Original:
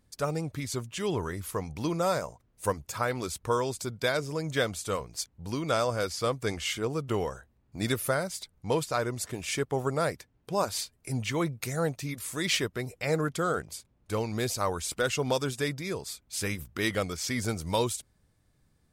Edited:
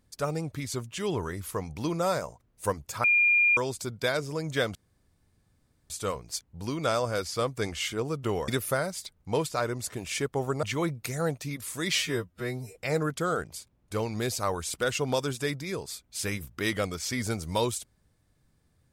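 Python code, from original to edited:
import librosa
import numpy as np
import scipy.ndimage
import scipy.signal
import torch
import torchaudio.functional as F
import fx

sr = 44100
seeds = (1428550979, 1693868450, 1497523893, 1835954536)

y = fx.edit(x, sr, fx.bleep(start_s=3.04, length_s=0.53, hz=2410.0, db=-18.5),
    fx.insert_room_tone(at_s=4.75, length_s=1.15),
    fx.cut(start_s=7.33, length_s=0.52),
    fx.cut(start_s=10.0, length_s=1.21),
    fx.stretch_span(start_s=12.54, length_s=0.4, factor=2.0), tone=tone)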